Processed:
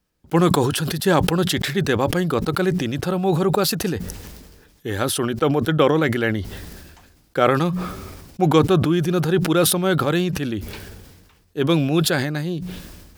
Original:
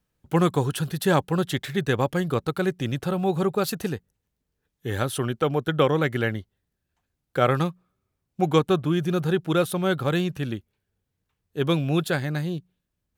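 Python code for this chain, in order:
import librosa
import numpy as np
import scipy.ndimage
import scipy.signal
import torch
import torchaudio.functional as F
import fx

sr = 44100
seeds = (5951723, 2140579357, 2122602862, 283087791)

y = fx.graphic_eq_31(x, sr, hz=(125, 315, 5000), db=(-9, 3, 5))
y = fx.sustainer(y, sr, db_per_s=39.0)
y = y * 10.0 ** (3.0 / 20.0)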